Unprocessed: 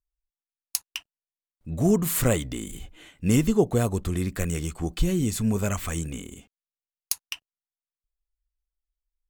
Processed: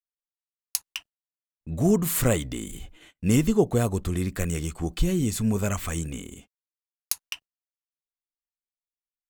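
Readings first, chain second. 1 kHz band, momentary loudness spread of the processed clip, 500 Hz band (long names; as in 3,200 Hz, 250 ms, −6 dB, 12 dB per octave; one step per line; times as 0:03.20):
0.0 dB, 16 LU, 0.0 dB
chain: noise gate −48 dBFS, range −30 dB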